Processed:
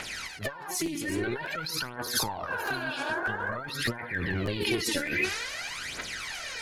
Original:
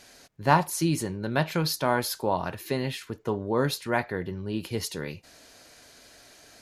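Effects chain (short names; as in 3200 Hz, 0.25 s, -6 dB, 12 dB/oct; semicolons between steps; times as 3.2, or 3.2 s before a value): bin magnitudes rounded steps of 30 dB; on a send at -10 dB: reverb, pre-delay 3 ms; on the sum: spectral repair 2.55–3.53, 280–2200 Hz before; transient shaper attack -11 dB, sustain +5 dB; bell 2000 Hz +12.5 dB 1.7 oct; notch 1700 Hz, Q 21; negative-ratio compressor -35 dBFS, ratio -1; phaser 0.5 Hz, delay 3.6 ms, feedback 67%; crackling interface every 0.60 s, samples 512, repeat, from 0.85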